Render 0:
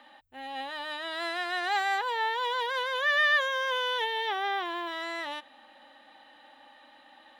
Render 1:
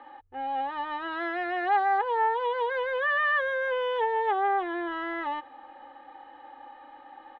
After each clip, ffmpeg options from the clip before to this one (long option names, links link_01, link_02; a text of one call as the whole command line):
ffmpeg -i in.wav -filter_complex "[0:a]lowpass=1300,aecho=1:1:2.4:0.74,asplit=2[link_01][link_02];[link_02]acompressor=threshold=-36dB:ratio=6,volume=1dB[link_03];[link_01][link_03]amix=inputs=2:normalize=0" out.wav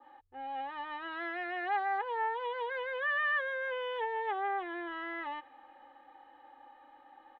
ffmpeg -i in.wav -af "adynamicequalizer=threshold=0.00631:dfrequency=2300:dqfactor=1.3:tfrequency=2300:tqfactor=1.3:attack=5:release=100:ratio=0.375:range=3:mode=boostabove:tftype=bell,volume=-9dB" out.wav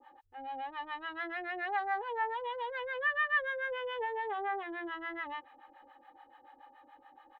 ffmpeg -i in.wav -filter_complex "[0:a]acrossover=split=660[link_01][link_02];[link_01]aeval=exprs='val(0)*(1-1/2+1/2*cos(2*PI*7*n/s))':channel_layout=same[link_03];[link_02]aeval=exprs='val(0)*(1-1/2-1/2*cos(2*PI*7*n/s))':channel_layout=same[link_04];[link_03][link_04]amix=inputs=2:normalize=0,volume=4dB" out.wav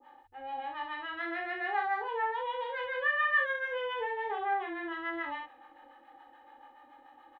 ffmpeg -i in.wav -af "aecho=1:1:24|63:0.631|0.631" out.wav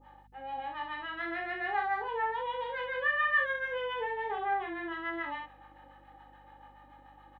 ffmpeg -i in.wav -af "aeval=exprs='val(0)+0.000891*(sin(2*PI*50*n/s)+sin(2*PI*2*50*n/s)/2+sin(2*PI*3*50*n/s)/3+sin(2*PI*4*50*n/s)/4+sin(2*PI*5*50*n/s)/5)':channel_layout=same" out.wav